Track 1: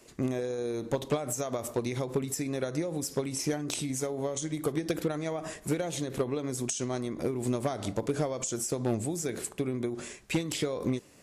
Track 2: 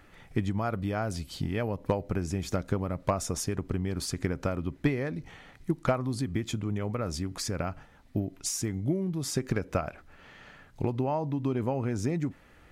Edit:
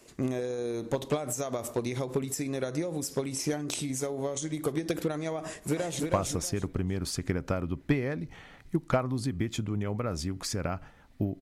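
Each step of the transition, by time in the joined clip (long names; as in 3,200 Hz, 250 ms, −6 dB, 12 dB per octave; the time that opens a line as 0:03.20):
track 1
0:05.44–0:06.03: delay throw 320 ms, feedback 25%, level −3.5 dB
0:06.03: continue with track 2 from 0:02.98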